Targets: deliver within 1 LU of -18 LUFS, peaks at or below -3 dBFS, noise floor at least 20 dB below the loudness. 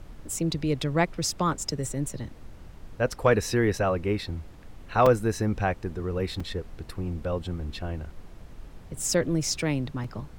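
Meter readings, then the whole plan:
dropouts 4; longest dropout 3.8 ms; noise floor -46 dBFS; noise floor target -48 dBFS; loudness -27.5 LUFS; peak -9.5 dBFS; loudness target -18.0 LUFS
-> interpolate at 3.12/5.06/6.4/10.04, 3.8 ms; noise print and reduce 6 dB; gain +9.5 dB; limiter -3 dBFS

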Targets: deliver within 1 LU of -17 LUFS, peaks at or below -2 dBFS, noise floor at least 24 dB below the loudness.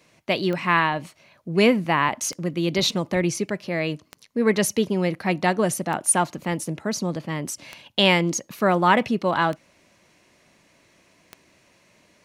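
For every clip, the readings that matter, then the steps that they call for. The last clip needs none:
clicks 7; loudness -23.0 LUFS; peak -5.0 dBFS; loudness target -17.0 LUFS
-> de-click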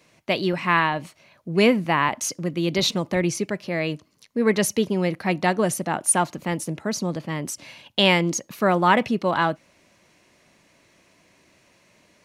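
clicks 0; loudness -23.0 LUFS; peak -5.0 dBFS; loudness target -17.0 LUFS
-> gain +6 dB; limiter -2 dBFS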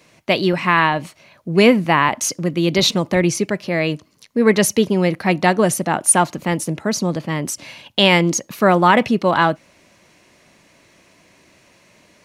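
loudness -17.0 LUFS; peak -2.0 dBFS; noise floor -54 dBFS

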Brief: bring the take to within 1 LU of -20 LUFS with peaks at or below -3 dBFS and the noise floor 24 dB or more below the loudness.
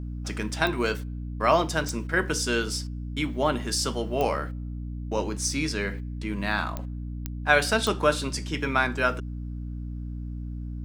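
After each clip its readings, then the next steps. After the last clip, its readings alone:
clicks 6; hum 60 Hz; harmonics up to 300 Hz; hum level -31 dBFS; loudness -27.5 LUFS; peak -6.0 dBFS; loudness target -20.0 LUFS
-> de-click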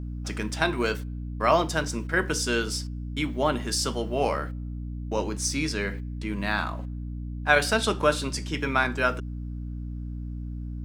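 clicks 0; hum 60 Hz; harmonics up to 300 Hz; hum level -31 dBFS
-> de-hum 60 Hz, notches 5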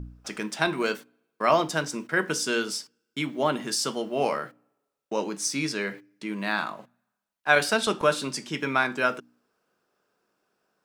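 hum none; loudness -27.0 LUFS; peak -5.5 dBFS; loudness target -20.0 LUFS
-> gain +7 dB; limiter -3 dBFS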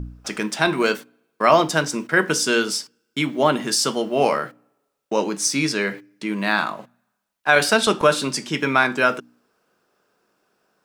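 loudness -20.5 LUFS; peak -3.0 dBFS; noise floor -75 dBFS

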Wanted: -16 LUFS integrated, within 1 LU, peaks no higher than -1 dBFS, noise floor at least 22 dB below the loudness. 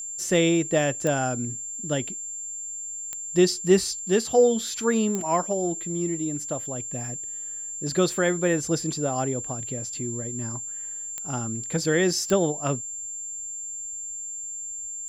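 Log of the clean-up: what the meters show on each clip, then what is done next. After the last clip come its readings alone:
clicks 5; steady tone 7300 Hz; tone level -32 dBFS; loudness -26.0 LUFS; peak -6.5 dBFS; loudness target -16.0 LUFS
-> de-click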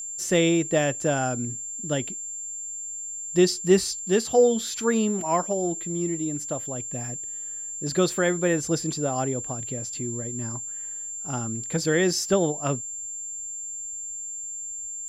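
clicks 0; steady tone 7300 Hz; tone level -32 dBFS
-> notch 7300 Hz, Q 30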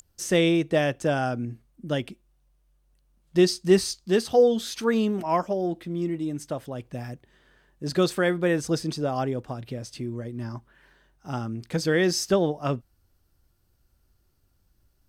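steady tone none; loudness -25.5 LUFS; peak -7.0 dBFS; loudness target -16.0 LUFS
-> gain +9.5 dB; limiter -1 dBFS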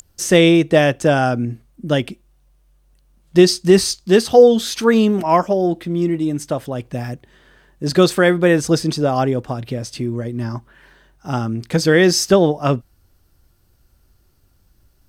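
loudness -16.5 LUFS; peak -1.0 dBFS; noise floor -58 dBFS

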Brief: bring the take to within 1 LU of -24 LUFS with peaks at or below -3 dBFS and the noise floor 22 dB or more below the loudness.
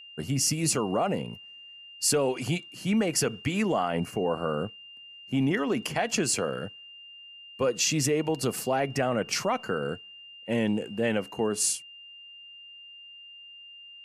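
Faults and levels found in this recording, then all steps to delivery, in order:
steady tone 2800 Hz; tone level -45 dBFS; loudness -27.5 LUFS; peak -13.0 dBFS; loudness target -24.0 LUFS
-> notch 2800 Hz, Q 30; gain +3.5 dB

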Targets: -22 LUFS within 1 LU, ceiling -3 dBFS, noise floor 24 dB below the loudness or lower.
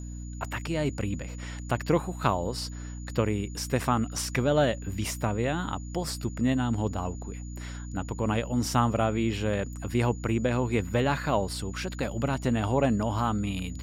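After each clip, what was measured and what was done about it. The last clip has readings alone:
hum 60 Hz; harmonics up to 300 Hz; hum level -35 dBFS; steady tone 6900 Hz; tone level -50 dBFS; loudness -29.0 LUFS; peak -9.5 dBFS; loudness target -22.0 LUFS
-> de-hum 60 Hz, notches 5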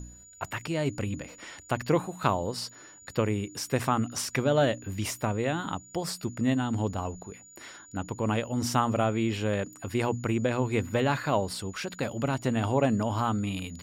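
hum none; steady tone 6900 Hz; tone level -50 dBFS
-> notch 6900 Hz, Q 30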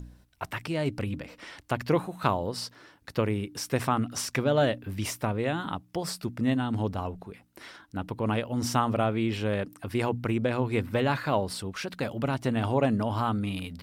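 steady tone none; loudness -29.5 LUFS; peak -9.5 dBFS; loudness target -22.0 LUFS
-> gain +7.5 dB; limiter -3 dBFS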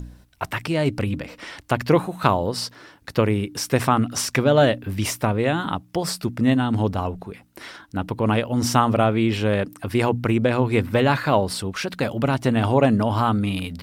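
loudness -22.0 LUFS; peak -3.0 dBFS; noise floor -52 dBFS

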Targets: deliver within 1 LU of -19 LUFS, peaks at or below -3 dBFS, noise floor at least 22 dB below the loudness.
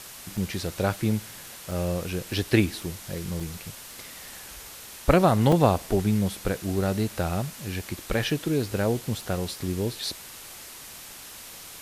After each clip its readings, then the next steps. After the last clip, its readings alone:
dropouts 4; longest dropout 3.4 ms; noise floor -43 dBFS; noise floor target -49 dBFS; loudness -26.5 LUFS; peak -6.0 dBFS; loudness target -19.0 LUFS
-> interpolate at 0.37/1.71/3.4/5.52, 3.4 ms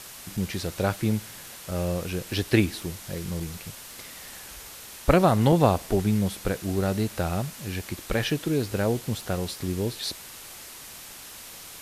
dropouts 0; noise floor -43 dBFS; noise floor target -49 dBFS
-> denoiser 6 dB, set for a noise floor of -43 dBFS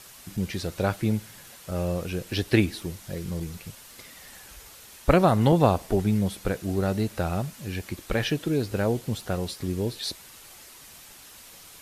noise floor -48 dBFS; noise floor target -49 dBFS
-> denoiser 6 dB, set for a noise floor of -48 dBFS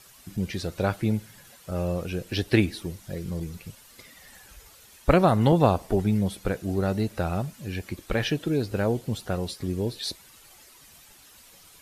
noise floor -53 dBFS; loudness -27.0 LUFS; peak -6.0 dBFS; loudness target -19.0 LUFS
-> gain +8 dB; limiter -3 dBFS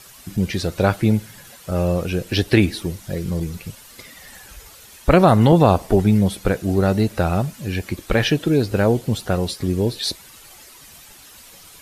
loudness -19.5 LUFS; peak -3.0 dBFS; noise floor -45 dBFS

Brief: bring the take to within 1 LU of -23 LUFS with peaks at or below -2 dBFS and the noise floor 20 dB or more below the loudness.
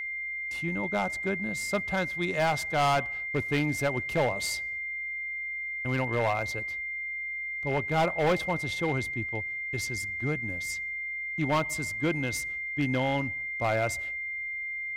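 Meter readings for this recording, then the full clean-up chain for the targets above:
clipped 1.1%; flat tops at -20.5 dBFS; steady tone 2100 Hz; tone level -32 dBFS; loudness -29.5 LUFS; peak -20.5 dBFS; loudness target -23.0 LUFS
-> clip repair -20.5 dBFS; notch 2100 Hz, Q 30; gain +6.5 dB

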